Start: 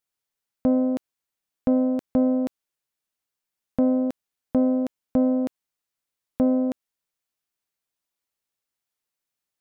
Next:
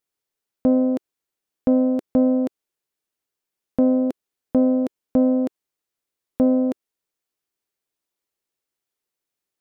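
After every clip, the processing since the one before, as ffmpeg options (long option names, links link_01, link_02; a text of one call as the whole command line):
ffmpeg -i in.wav -af "equalizer=frequency=380:width=1.6:gain=7.5" out.wav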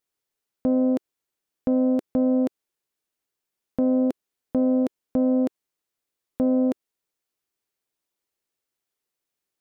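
ffmpeg -i in.wav -af "alimiter=limit=-14dB:level=0:latency=1:release=52" out.wav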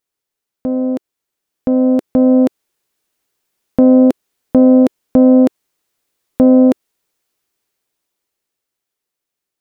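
ffmpeg -i in.wav -af "dynaudnorm=framelen=230:gausssize=17:maxgain=10.5dB,volume=3dB" out.wav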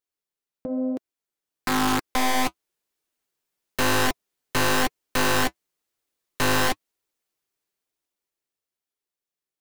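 ffmpeg -i in.wav -af "aeval=exprs='(mod(2.24*val(0)+1,2)-1)/2.24':channel_layout=same,flanger=delay=2.1:depth=5.7:regen=-47:speed=1:shape=triangular,volume=-6dB" out.wav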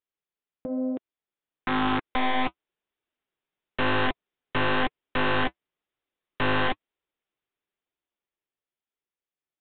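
ffmpeg -i in.wav -af "aresample=8000,aresample=44100,volume=-2dB" out.wav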